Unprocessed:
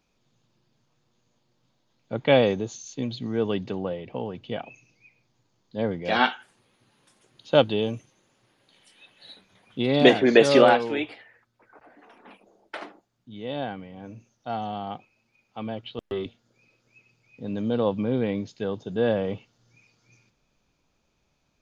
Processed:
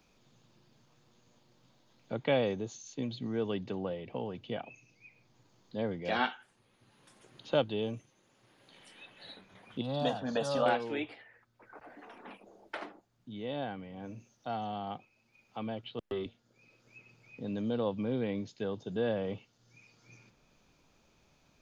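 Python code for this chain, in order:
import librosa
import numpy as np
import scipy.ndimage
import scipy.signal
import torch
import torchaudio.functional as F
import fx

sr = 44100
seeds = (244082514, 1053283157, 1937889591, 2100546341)

y = fx.fixed_phaser(x, sr, hz=890.0, stages=4, at=(9.81, 10.66))
y = fx.band_squash(y, sr, depth_pct=40)
y = F.gain(torch.from_numpy(y), -7.0).numpy()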